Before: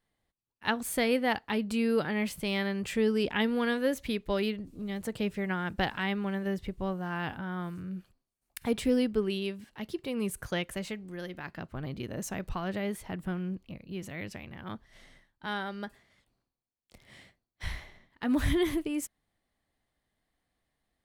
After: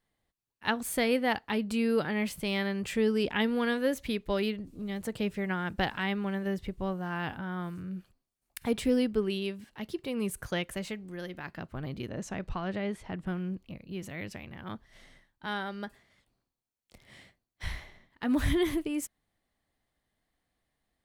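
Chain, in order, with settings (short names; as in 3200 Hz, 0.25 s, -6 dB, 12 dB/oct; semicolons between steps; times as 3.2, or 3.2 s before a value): 12.09–13.27 air absorption 70 m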